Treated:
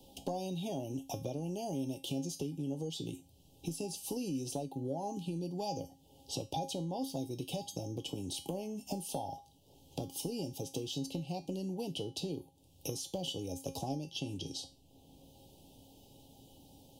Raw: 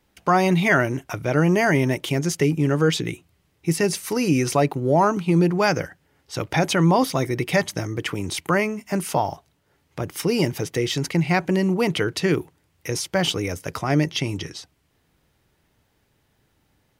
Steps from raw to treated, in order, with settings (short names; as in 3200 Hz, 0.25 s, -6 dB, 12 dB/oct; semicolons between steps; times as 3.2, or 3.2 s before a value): elliptic band-stop 830–3000 Hz, stop band 40 dB; compressor 8:1, threshold -34 dBFS, peak gain reduction 19.5 dB; resonator 270 Hz, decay 0.3 s, harmonics all, mix 80%; three-band squash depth 40%; gain +9.5 dB